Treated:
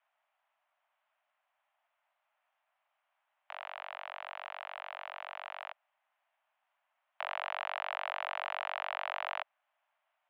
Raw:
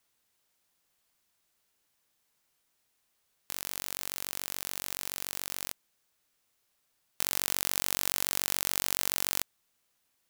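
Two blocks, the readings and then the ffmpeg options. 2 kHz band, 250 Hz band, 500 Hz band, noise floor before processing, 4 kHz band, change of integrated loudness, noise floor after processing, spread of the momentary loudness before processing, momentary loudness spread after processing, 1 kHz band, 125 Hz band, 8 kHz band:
+0.5 dB, under -40 dB, +2.0 dB, -76 dBFS, -10.0 dB, -8.5 dB, -83 dBFS, 9 LU, 9 LU, +6.0 dB, under -40 dB, under -40 dB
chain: -af "tiltshelf=f=1.1k:g=6.5,highpass=f=220:t=q:w=0.5412,highpass=f=220:t=q:w=1.307,lowpass=f=2.7k:t=q:w=0.5176,lowpass=f=2.7k:t=q:w=0.7071,lowpass=f=2.7k:t=q:w=1.932,afreqshift=390,volume=2.5dB"

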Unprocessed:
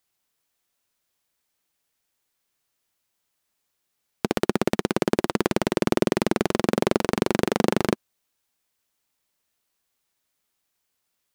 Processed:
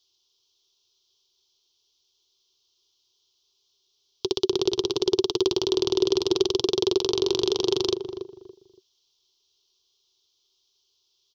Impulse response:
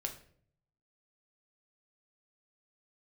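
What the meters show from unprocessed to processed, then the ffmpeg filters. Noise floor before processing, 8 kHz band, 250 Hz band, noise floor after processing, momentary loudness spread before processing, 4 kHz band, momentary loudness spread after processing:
-77 dBFS, +1.0 dB, -3.5 dB, -72 dBFS, 3 LU, +8.0 dB, 8 LU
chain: -filter_complex "[0:a]firequalizer=gain_entry='entry(120,0);entry(210,-23);entry(380,12);entry(560,-12);entry(1000,0);entry(1800,-21);entry(3200,15);entry(5800,14);entry(8600,-21);entry(14000,-8)':delay=0.05:min_phase=1,alimiter=limit=-7.5dB:level=0:latency=1:release=44,asplit=2[a][b];[b]adelay=283,lowpass=f=940:p=1,volume=-8dB,asplit=2[c][d];[d]adelay=283,lowpass=f=940:p=1,volume=0.29,asplit=2[e][f];[f]adelay=283,lowpass=f=940:p=1,volume=0.29[g];[a][c][e][g]amix=inputs=4:normalize=0"

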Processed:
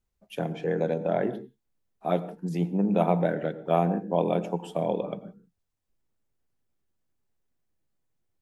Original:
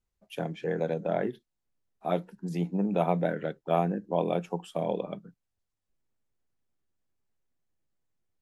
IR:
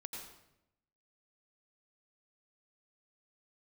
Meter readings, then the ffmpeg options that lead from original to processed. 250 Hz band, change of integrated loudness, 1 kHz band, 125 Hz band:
+3.5 dB, +3.0 dB, +2.5 dB, +3.0 dB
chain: -filter_complex "[0:a]asplit=2[a][b];[b]equalizer=f=4.4k:t=o:w=2.9:g=-13[c];[1:a]atrim=start_sample=2205,afade=t=out:st=0.24:d=0.01,atrim=end_sample=11025[d];[c][d]afir=irnorm=-1:irlink=0,volume=-1.5dB[e];[a][e]amix=inputs=2:normalize=0"

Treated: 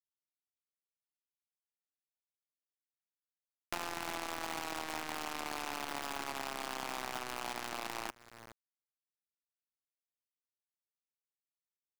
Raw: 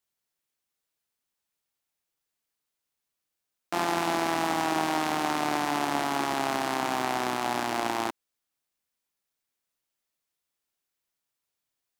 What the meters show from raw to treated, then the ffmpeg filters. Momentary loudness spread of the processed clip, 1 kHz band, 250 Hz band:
5 LU, -13.5 dB, -16.5 dB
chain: -filter_complex "[0:a]alimiter=limit=-15dB:level=0:latency=1:release=66,asplit=2[a][b];[b]adelay=418,lowpass=f=1.1k:p=1,volume=-21.5dB,asplit=2[c][d];[d]adelay=418,lowpass=f=1.1k:p=1,volume=0.41,asplit=2[e][f];[f]adelay=418,lowpass=f=1.1k:p=1,volume=0.41[g];[a][c][e][g]amix=inputs=4:normalize=0,acrusher=bits=5:dc=4:mix=0:aa=0.000001,acrossover=split=1000|7100[h][i][j];[h]acompressor=threshold=-46dB:ratio=4[k];[i]acompressor=threshold=-43dB:ratio=4[l];[j]acompressor=threshold=-52dB:ratio=4[m];[k][l][m]amix=inputs=3:normalize=0,volume=2dB"

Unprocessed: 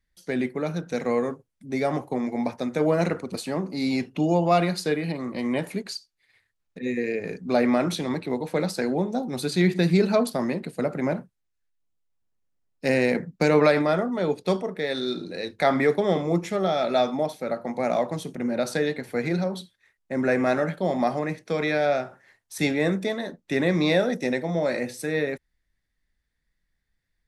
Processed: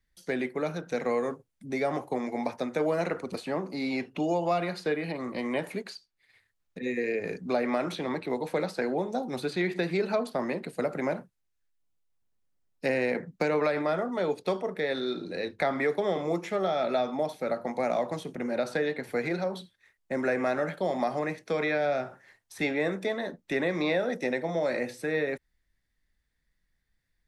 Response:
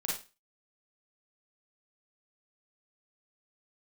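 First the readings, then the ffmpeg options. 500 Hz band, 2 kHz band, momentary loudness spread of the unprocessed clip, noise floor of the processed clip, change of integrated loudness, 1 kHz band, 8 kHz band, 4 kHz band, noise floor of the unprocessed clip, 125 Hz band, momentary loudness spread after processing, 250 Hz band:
-4.0 dB, -3.0 dB, 9 LU, -77 dBFS, -5.0 dB, -4.0 dB, n/a, -6.5 dB, -77 dBFS, -10.0 dB, 7 LU, -7.0 dB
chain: -filter_complex "[0:a]acrossover=split=340|3200[a][b][c];[a]acompressor=threshold=-39dB:ratio=4[d];[b]acompressor=threshold=-25dB:ratio=4[e];[c]acompressor=threshold=-51dB:ratio=4[f];[d][e][f]amix=inputs=3:normalize=0"

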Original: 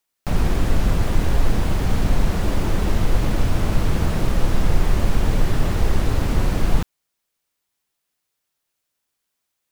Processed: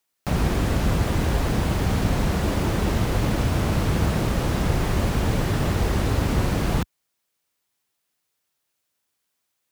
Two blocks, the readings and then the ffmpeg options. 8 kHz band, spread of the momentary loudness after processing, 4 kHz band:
+1.0 dB, 1 LU, +1.0 dB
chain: -af "highpass=57,volume=1dB"

